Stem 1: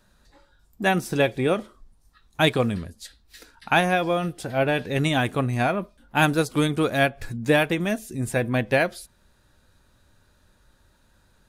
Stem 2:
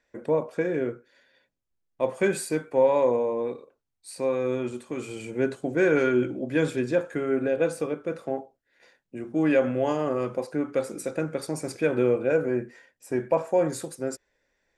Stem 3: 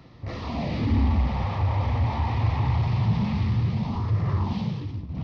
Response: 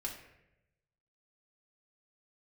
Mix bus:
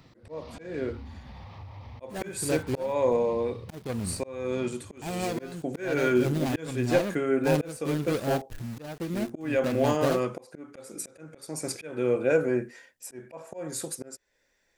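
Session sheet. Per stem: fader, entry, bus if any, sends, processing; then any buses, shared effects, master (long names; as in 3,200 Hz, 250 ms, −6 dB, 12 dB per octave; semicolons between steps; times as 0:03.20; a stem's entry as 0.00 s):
−4.0 dB, 1.30 s, no send, running median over 41 samples; centre clipping without the shift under −39.5 dBFS
0.0 dB, 0.00 s, no send, no processing
−1.0 dB, 0.00 s, no send, flanger 1.7 Hz, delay 6.5 ms, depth 6.8 ms, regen −79%; downward compressor, threshold −28 dBFS, peak gain reduction 7 dB; automatic ducking −11 dB, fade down 1.20 s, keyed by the second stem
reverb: not used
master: high-shelf EQ 3,400 Hz +8.5 dB; volume swells 382 ms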